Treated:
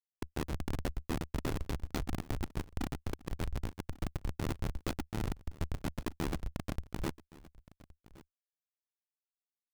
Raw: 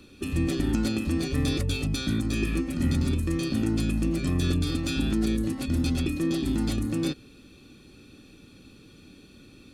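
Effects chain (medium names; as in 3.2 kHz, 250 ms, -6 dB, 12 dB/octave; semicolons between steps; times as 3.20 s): frequency weighting A; reverb removal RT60 0.76 s; dynamic bell 2.7 kHz, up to -6 dB, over -51 dBFS, Q 1.1; in parallel at -2.5 dB: compression 16:1, threshold -41 dBFS, peak gain reduction 11.5 dB; on the sum: Schmitt trigger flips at -27 dBFS; AM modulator 75 Hz, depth 80%; on a send: delay 1118 ms -20.5 dB; on the sum: trim +7 dB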